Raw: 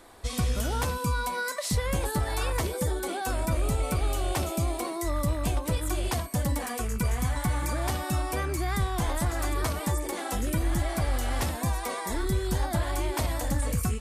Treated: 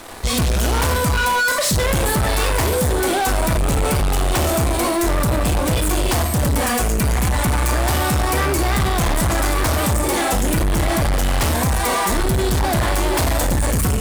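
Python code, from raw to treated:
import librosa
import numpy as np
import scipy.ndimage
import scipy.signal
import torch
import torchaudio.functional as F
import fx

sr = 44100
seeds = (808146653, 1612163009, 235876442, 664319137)

y = fx.rev_schroeder(x, sr, rt60_s=0.51, comb_ms=26, drr_db=6.5)
y = fx.leveller(y, sr, passes=5)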